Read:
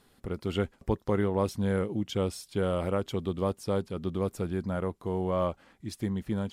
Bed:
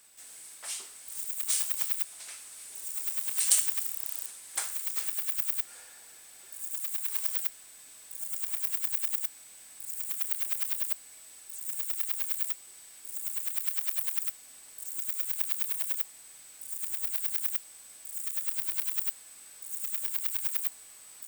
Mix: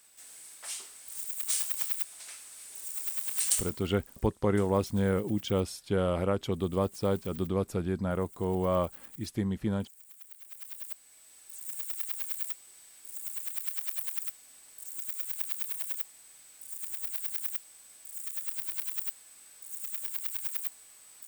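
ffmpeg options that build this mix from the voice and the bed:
-filter_complex "[0:a]adelay=3350,volume=0.5dB[a];[1:a]volume=13.5dB,afade=t=out:st=3.42:d=0.38:silence=0.141254,afade=t=in:st=10.42:d=1.13:silence=0.177828[b];[a][b]amix=inputs=2:normalize=0"

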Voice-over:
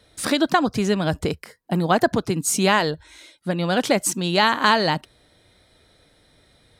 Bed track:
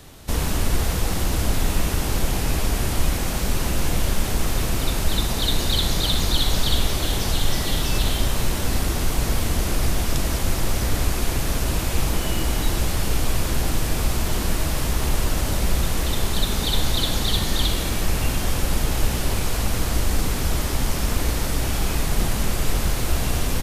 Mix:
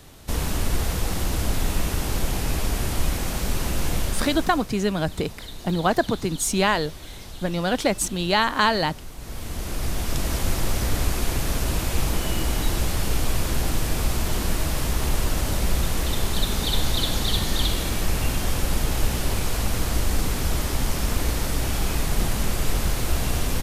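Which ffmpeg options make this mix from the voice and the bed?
-filter_complex "[0:a]adelay=3950,volume=-2.5dB[a];[1:a]volume=13dB,afade=t=out:st=3.96:d=0.73:silence=0.188365,afade=t=in:st=9.17:d=1.22:silence=0.16788[b];[a][b]amix=inputs=2:normalize=0"

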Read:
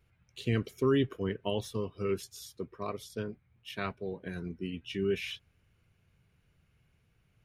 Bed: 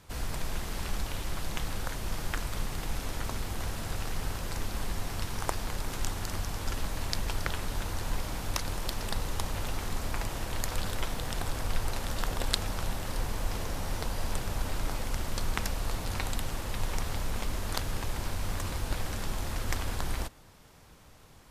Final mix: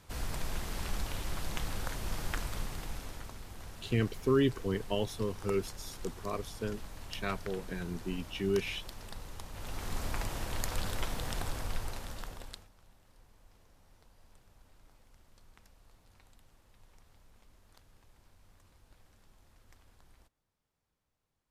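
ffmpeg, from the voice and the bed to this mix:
-filter_complex "[0:a]adelay=3450,volume=0dB[a];[1:a]volume=7.5dB,afade=t=out:st=2.38:d=0.96:silence=0.316228,afade=t=in:st=9.51:d=0.48:silence=0.316228,afade=t=out:st=11.32:d=1.37:silence=0.0446684[b];[a][b]amix=inputs=2:normalize=0"

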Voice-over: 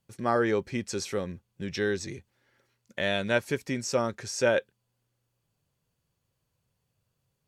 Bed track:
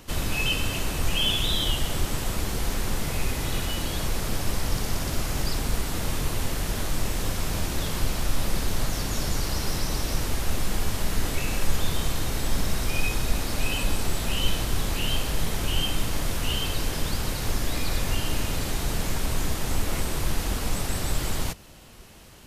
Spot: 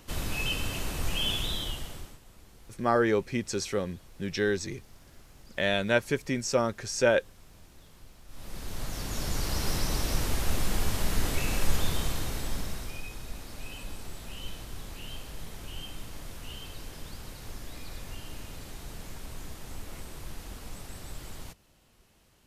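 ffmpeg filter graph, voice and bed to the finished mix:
-filter_complex "[0:a]adelay=2600,volume=1dB[a];[1:a]volume=19dB,afade=t=out:st=1.34:d=0.85:silence=0.0891251,afade=t=in:st=8.27:d=1.42:silence=0.0595662,afade=t=out:st=11.74:d=1.29:silence=0.223872[b];[a][b]amix=inputs=2:normalize=0"

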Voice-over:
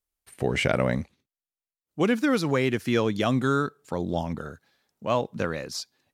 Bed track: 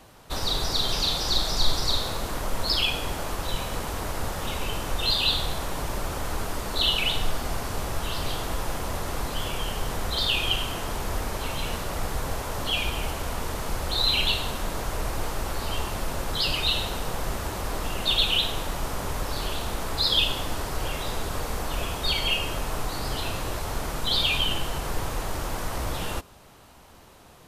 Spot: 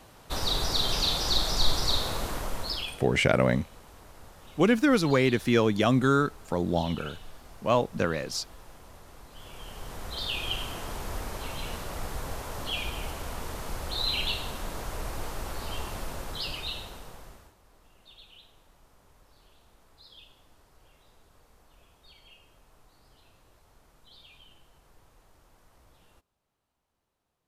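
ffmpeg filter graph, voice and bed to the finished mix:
-filter_complex "[0:a]adelay=2600,volume=1dB[a];[1:a]volume=12.5dB,afade=t=out:st=2.22:d=0.83:silence=0.11885,afade=t=in:st=9.29:d=1.33:silence=0.199526,afade=t=out:st=15.96:d=1.59:silence=0.0595662[b];[a][b]amix=inputs=2:normalize=0"

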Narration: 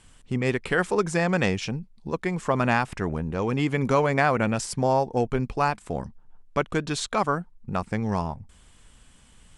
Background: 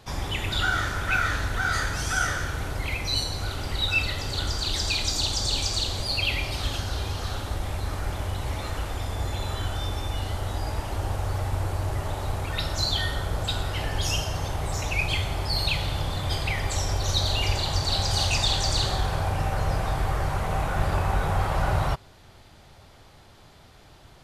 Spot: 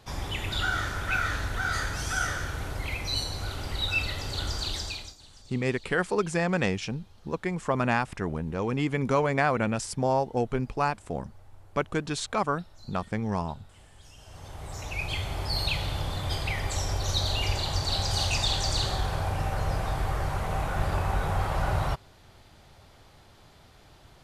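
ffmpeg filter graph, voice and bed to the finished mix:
-filter_complex "[0:a]adelay=5200,volume=-3dB[a];[1:a]volume=21dB,afade=t=out:st=4.63:d=0.53:silence=0.0630957,afade=t=in:st=14.16:d=1.34:silence=0.0595662[b];[a][b]amix=inputs=2:normalize=0"

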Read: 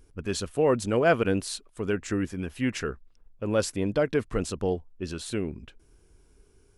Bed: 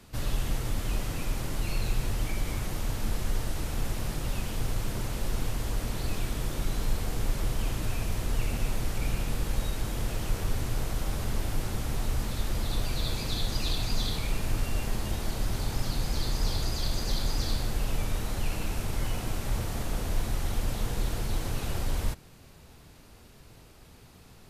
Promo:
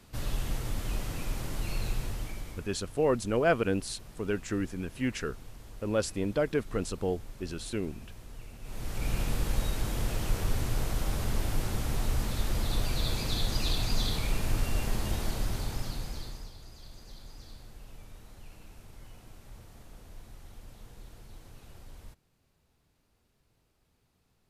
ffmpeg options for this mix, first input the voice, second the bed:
-filter_complex "[0:a]adelay=2400,volume=-3.5dB[a];[1:a]volume=14dB,afade=t=out:st=1.86:d=0.85:silence=0.199526,afade=t=in:st=8.62:d=0.58:silence=0.141254,afade=t=out:st=15.2:d=1.31:silence=0.105925[b];[a][b]amix=inputs=2:normalize=0"

